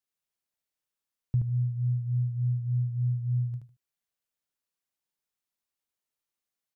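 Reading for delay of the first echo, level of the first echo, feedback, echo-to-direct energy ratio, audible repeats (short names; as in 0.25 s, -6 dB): 76 ms, -4.0 dB, 20%, -4.0 dB, 3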